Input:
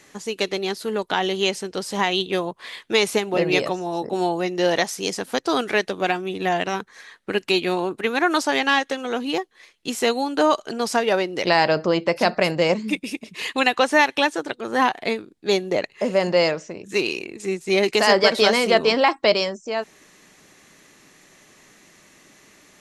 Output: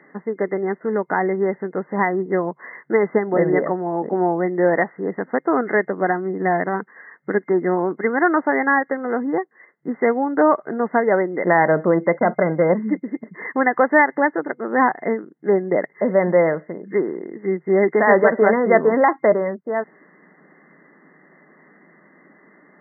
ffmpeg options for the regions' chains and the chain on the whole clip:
-filter_complex "[0:a]asettb=1/sr,asplit=3[s0][s1][s2];[s0]atrim=end=12.194[s3];[s1]atrim=start=12.19:end=12.68,asetpts=PTS-STARTPTS,afade=t=in:d=0.004:c=qsin,afade=t=out:st=0.486:d=0.004:c=qsin,agate=range=0.0224:threshold=0.0501:ratio=3:release=100:detection=peak,asuperstop=centerf=1800:order=4:qfactor=7.3,volume=3.98,asoftclip=hard,volume=0.251[s4];[s2]atrim=start=12.676[s5];[s3][s4]acrossfade=d=0.004:c1=hsin:c2=qsin[s6];[s6][s5]acrossfade=d=0.004:c1=qsin:c2=hsin,afftfilt=real='re*between(b*sr/4096,140,2100)':imag='im*between(b*sr/4096,140,2100)':win_size=4096:overlap=0.75,equalizer=f=1100:w=0.58:g=-2.5,volume=1.68"

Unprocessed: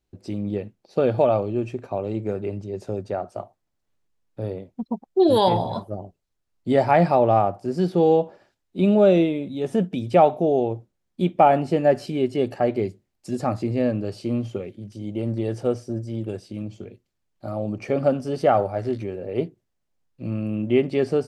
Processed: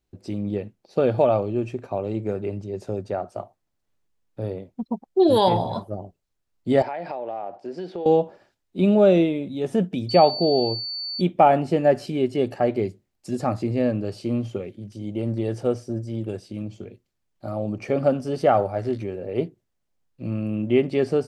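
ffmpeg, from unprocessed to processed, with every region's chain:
-filter_complex "[0:a]asettb=1/sr,asplit=3[s0][s1][s2];[s0]atrim=end=6.824[s3];[s1]atrim=start=6.82:end=8.06,asetpts=PTS-STARTPTS,afade=t=in:d=0.004:c=qsin,afade=t=out:st=1.236:d=0.004:c=qsin,highpass=360,lowpass=4100,equalizer=f=1200:w=4.4:g=-7.5,acompressor=threshold=0.0447:ratio=8:attack=3.2:release=140:knee=1:detection=peak[s4];[s2]atrim=start=8.056[s5];[s3][s4]acrossfade=d=0.004:c1=hsin:c2=qsin[s6];[s6][s5]acrossfade=d=0.004:c1=qsin:c2=hsin,asettb=1/sr,asplit=3[s7][s8][s9];[s7]atrim=end=10.094[s10];[s8]atrim=start=10.09:end=11.21,asetpts=PTS-STARTPTS,afade=t=in:d=0.004:c=qsin,afade=t=out:st=1.116:d=0.004:c=qsin,aeval=exprs='val(0)+0.0398*sin(2*PI*4500*n/s)':c=same,bandreject=f=1400:w=8[s11];[s9]atrim=start=11.206[s12];[s10][s11]acrossfade=d=0.004:c1=hsin:c2=qsin[s13];[s13][s12]acrossfade=d=0.004:c1=qsin:c2=hsin"

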